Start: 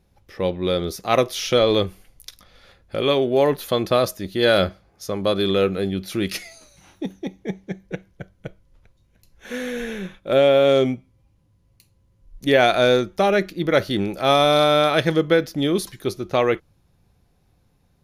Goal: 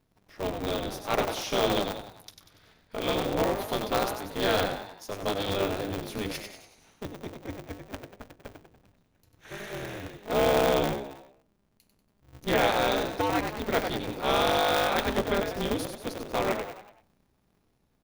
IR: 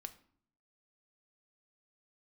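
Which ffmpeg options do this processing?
-filter_complex "[0:a]bandreject=f=50:t=h:w=6,bandreject=f=100:t=h:w=6,bandreject=f=150:t=h:w=6,bandreject=f=200:t=h:w=6,bandreject=f=250:t=h:w=6,bandreject=f=300:t=h:w=6,bandreject=f=350:t=h:w=6,bandreject=f=400:t=h:w=6,bandreject=f=450:t=h:w=6,bandreject=f=500:t=h:w=6,asplit=6[a][b][c][d][e][f];[b]adelay=95,afreqshift=60,volume=-6.5dB[g];[c]adelay=190,afreqshift=120,volume=-13.2dB[h];[d]adelay=285,afreqshift=180,volume=-20dB[i];[e]adelay=380,afreqshift=240,volume=-26.7dB[j];[f]adelay=475,afreqshift=300,volume=-33.5dB[k];[a][g][h][i][j][k]amix=inputs=6:normalize=0,aeval=exprs='val(0)*sgn(sin(2*PI*100*n/s))':c=same,volume=-9dB"

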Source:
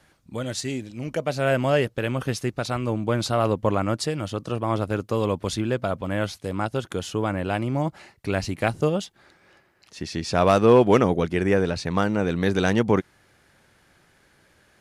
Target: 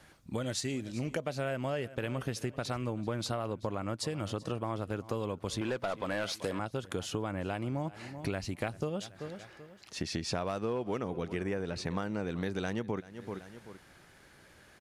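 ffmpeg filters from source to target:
-filter_complex "[0:a]aecho=1:1:384|768:0.0891|0.0276,asettb=1/sr,asplit=3[a][b][c];[a]atrim=end=5.614[d];[b]atrim=start=5.61:end=6.59,asetpts=PTS-STARTPTS,afade=t=in:d=0.004:c=qsin,afade=t=out:st=0.976:d=0.004:c=qsin,asplit=2[e][f];[f]highpass=f=720:p=1,volume=18dB,asoftclip=type=tanh:threshold=-11dB[g];[e][g]amix=inputs=2:normalize=0,lowpass=f=6.6k:p=1,volume=-6dB[h];[c]atrim=start=6.586[i];[d][h]acrossfade=d=0.004:c1=hsin:c2=qsin[j];[j][i]acrossfade=d=0.004:c1=qsin:c2=hsin,acompressor=threshold=-32dB:ratio=10,volume=1dB"

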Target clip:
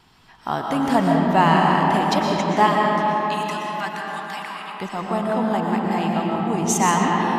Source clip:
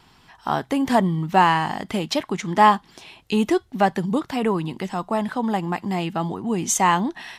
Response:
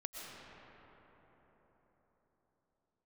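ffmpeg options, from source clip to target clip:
-filter_complex "[0:a]asplit=3[a][b][c];[a]afade=t=out:st=2.66:d=0.02[d];[b]highpass=f=1.1k:w=0.5412,highpass=f=1.1k:w=1.3066,afade=t=in:st=2.66:d=0.02,afade=t=out:st=4.78:d=0.02[e];[c]afade=t=in:st=4.78:d=0.02[f];[d][e][f]amix=inputs=3:normalize=0[g];[1:a]atrim=start_sample=2205[h];[g][h]afir=irnorm=-1:irlink=0,volume=3dB"

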